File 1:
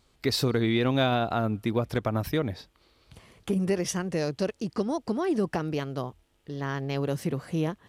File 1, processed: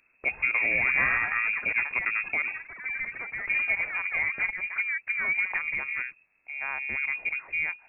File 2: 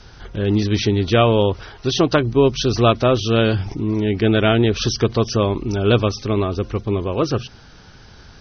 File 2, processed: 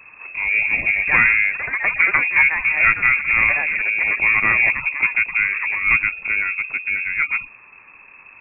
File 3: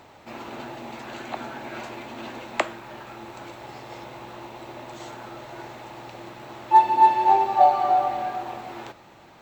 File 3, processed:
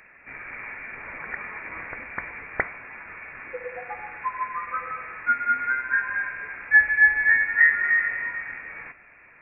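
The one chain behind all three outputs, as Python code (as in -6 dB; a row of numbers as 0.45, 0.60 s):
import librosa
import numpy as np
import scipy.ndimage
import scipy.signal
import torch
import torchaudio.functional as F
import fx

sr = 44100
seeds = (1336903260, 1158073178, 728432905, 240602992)

y = fx.hum_notches(x, sr, base_hz=50, count=3)
y = fx.echo_pitch(y, sr, ms=236, semitones=5, count=3, db_per_echo=-6.0)
y = fx.freq_invert(y, sr, carrier_hz=2600)
y = y * librosa.db_to_amplitude(-1.5)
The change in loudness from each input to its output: +2.0, +2.0, -1.0 LU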